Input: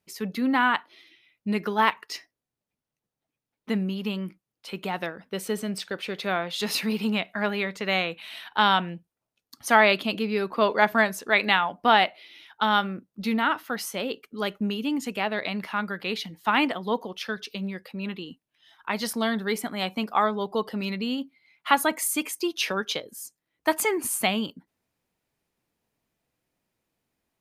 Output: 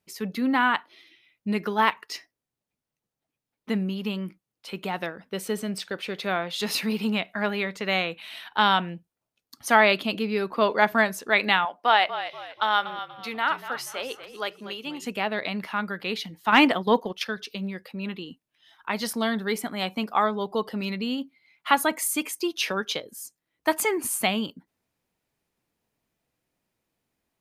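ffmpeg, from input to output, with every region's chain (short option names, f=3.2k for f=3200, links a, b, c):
-filter_complex "[0:a]asettb=1/sr,asplit=3[a][b][c];[a]atrim=end=11.654[d];[b]atrim=start=11.65:end=15.05,asetpts=PTS-STARTPTS,afade=t=in:d=0.004:c=qsin,afade=t=out:st=3.396:d=0.004:c=qsin,highpass=510,highshelf=f=10k:g=-7,asplit=5[e][f][g][h][i];[f]adelay=240,afreqshift=-43,volume=-12dB[j];[g]adelay=480,afreqshift=-86,volume=-20.9dB[k];[h]adelay=720,afreqshift=-129,volume=-29.7dB[l];[i]adelay=960,afreqshift=-172,volume=-38.6dB[m];[e][j][k][l][m]amix=inputs=5:normalize=0,atrim=end_sample=149940[n];[c]atrim=start=15.046[o];[d][n]acrossfade=d=0.004:c1=hsin:c2=qsin[p];[p][o]acrossfade=d=0.004:c1=qsin:c2=hsin,asettb=1/sr,asplit=3[q][r][s];[q]atrim=end=16.524[t];[r]atrim=start=16.52:end=17.26,asetpts=PTS-STARTPTS,afade=t=in:d=0.004:c=qsin,afade=t=out:st=0.736:d=0.004:c=qsin,agate=range=-9dB:threshold=-36dB:ratio=16:release=100:detection=peak,acontrast=52[u];[s]atrim=start=17.256[v];[t][u]acrossfade=d=0.004:c1=hsin:c2=qsin[w];[w][v]acrossfade=d=0.004:c1=qsin:c2=hsin"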